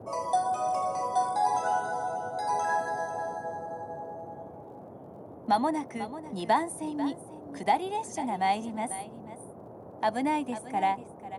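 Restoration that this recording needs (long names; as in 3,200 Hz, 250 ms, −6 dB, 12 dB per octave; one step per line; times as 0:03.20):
click removal
noise reduction from a noise print 29 dB
echo removal 493 ms −13.5 dB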